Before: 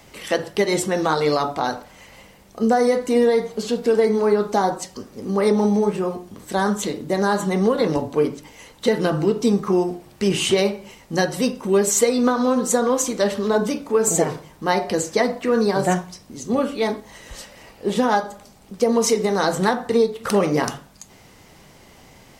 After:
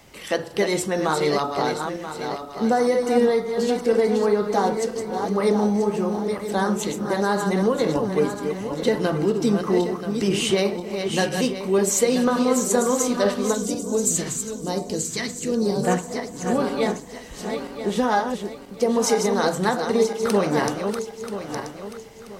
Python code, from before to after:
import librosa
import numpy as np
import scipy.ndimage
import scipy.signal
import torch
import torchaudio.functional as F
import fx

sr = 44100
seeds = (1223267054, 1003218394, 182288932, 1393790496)

y = fx.reverse_delay_fb(x, sr, ms=491, feedback_pct=57, wet_db=-6.0)
y = fx.phaser_stages(y, sr, stages=2, low_hz=600.0, high_hz=1600.0, hz=1.1, feedback_pct=45, at=(13.53, 15.83), fade=0.02)
y = F.gain(torch.from_numpy(y), -2.5).numpy()